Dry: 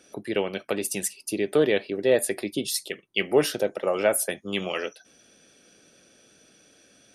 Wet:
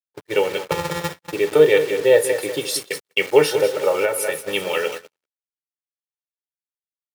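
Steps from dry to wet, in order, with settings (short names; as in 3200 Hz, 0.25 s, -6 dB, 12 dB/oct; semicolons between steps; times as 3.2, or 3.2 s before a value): 0.71–1.33 sample sorter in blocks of 256 samples; bell 320 Hz -8.5 dB 0.49 oct; comb 2.2 ms, depth 97%; feedback echo 0.191 s, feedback 37%, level -10 dB; FDN reverb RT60 0.34 s, low-frequency decay 0.75×, high-frequency decay 0.7×, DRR 8 dB; bit-crush 6-bit; high shelf 4100 Hz -5.5 dB; 4.04–4.53 compressor, threshold -21 dBFS, peak gain reduction 6.5 dB; gate -32 dBFS, range -42 dB; HPF 120 Hz 12 dB/oct; gain +4 dB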